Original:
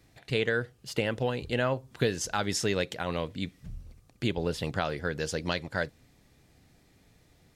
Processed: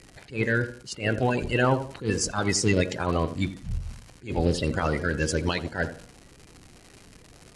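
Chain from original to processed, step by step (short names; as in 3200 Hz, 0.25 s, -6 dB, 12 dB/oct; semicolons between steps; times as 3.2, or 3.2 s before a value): bin magnitudes rounded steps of 30 dB; limiter -20 dBFS, peak gain reduction 7.5 dB; crackle 250/s -42 dBFS; steep low-pass 11000 Hz 48 dB/oct; low shelf 120 Hz +6 dB; notch 3500 Hz, Q 14; de-hum 236.9 Hz, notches 19; tape echo 85 ms, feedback 42%, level -10 dB, low-pass 1000 Hz; attack slew limiter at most 200 dB/s; gain +7 dB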